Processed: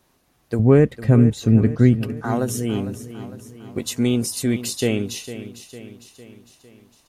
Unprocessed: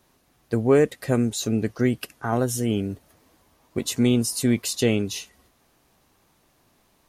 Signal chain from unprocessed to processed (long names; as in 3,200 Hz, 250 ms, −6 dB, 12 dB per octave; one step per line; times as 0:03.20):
0:00.59–0:02.17: bass and treble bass +13 dB, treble −10 dB
repeating echo 454 ms, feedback 54%, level −13 dB